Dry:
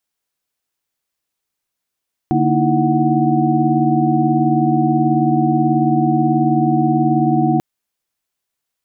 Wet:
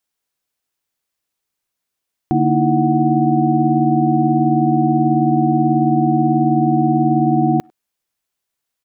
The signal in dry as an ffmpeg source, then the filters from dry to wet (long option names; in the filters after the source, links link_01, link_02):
-f lavfi -i "aevalsrc='0.119*(sin(2*PI*146.83*t)+sin(2*PI*233.08*t)+sin(2*PI*311.13*t)+sin(2*PI*329.63*t)+sin(2*PI*739.99*t))':duration=5.29:sample_rate=44100"
-filter_complex "[0:a]asplit=2[link_01][link_02];[link_02]adelay=100,highpass=300,lowpass=3400,asoftclip=type=hard:threshold=-13.5dB,volume=-29dB[link_03];[link_01][link_03]amix=inputs=2:normalize=0"